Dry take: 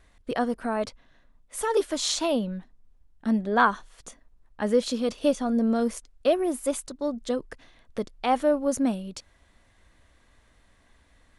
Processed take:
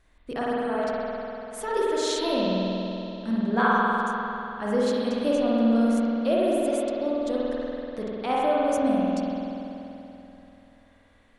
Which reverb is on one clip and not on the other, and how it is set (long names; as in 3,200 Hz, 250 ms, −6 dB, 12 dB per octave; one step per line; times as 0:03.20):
spring reverb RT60 3.2 s, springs 48 ms, chirp 20 ms, DRR −6.5 dB
level −5.5 dB